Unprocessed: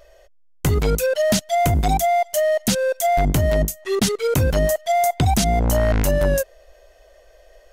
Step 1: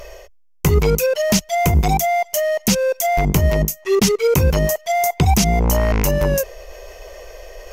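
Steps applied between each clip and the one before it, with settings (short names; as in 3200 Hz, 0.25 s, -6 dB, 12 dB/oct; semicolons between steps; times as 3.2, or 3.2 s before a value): ripple EQ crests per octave 0.79, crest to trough 7 dB; reverse; upward compressor, threshold -26 dBFS; reverse; gain +2.5 dB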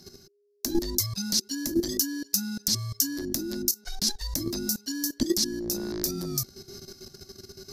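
frequency shift -410 Hz; level quantiser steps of 12 dB; resonant high shelf 3300 Hz +9.5 dB, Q 3; gain -8.5 dB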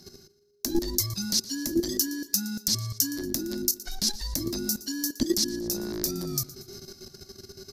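feedback echo 0.117 s, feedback 52%, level -18 dB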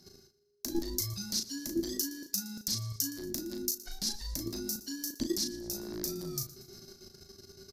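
doubler 36 ms -6 dB; gain -8 dB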